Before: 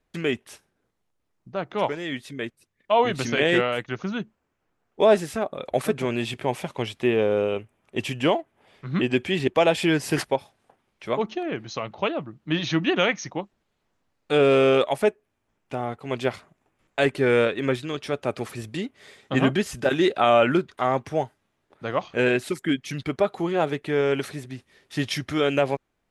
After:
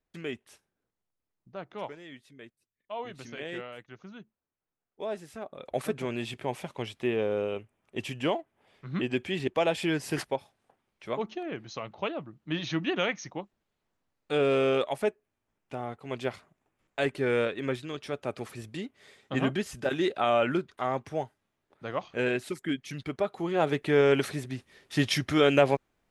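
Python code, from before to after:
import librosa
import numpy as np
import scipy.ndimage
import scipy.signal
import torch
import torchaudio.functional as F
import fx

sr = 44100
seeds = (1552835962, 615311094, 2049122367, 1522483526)

y = fx.gain(x, sr, db=fx.line((1.63, -11.0), (2.22, -17.5), (5.17, -17.5), (5.78, -7.0), (23.37, -7.0), (23.79, 0.5)))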